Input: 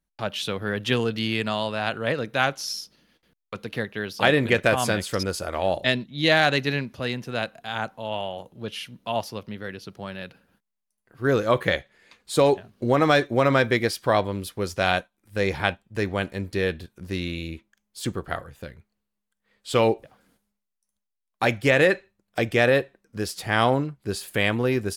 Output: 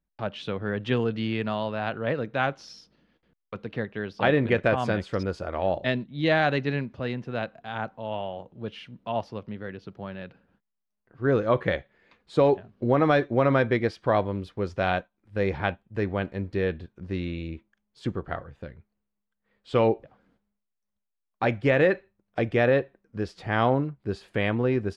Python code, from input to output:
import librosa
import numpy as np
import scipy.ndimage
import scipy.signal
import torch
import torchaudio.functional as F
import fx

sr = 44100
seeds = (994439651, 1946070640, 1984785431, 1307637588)

y = fx.spacing_loss(x, sr, db_at_10k=29)